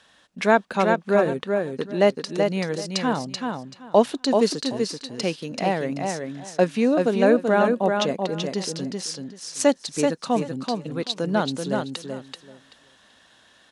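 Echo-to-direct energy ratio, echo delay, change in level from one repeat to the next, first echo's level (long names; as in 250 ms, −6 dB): −4.5 dB, 383 ms, −14.5 dB, −4.5 dB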